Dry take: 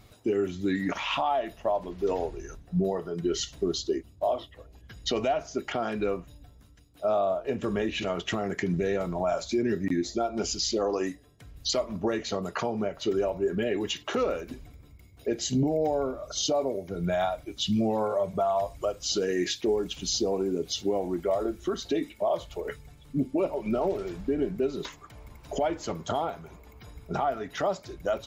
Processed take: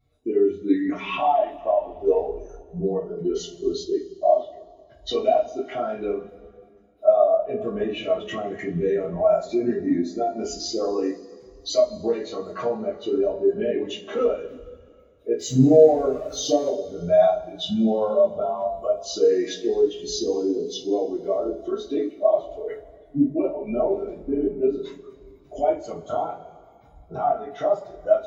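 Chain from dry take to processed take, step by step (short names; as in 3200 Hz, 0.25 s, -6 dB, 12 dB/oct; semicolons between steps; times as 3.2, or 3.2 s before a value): 15.39–16.7 zero-crossing step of -34.5 dBFS; two-slope reverb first 0.3 s, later 3.3 s, from -18 dB, DRR -9 dB; spectral expander 1.5:1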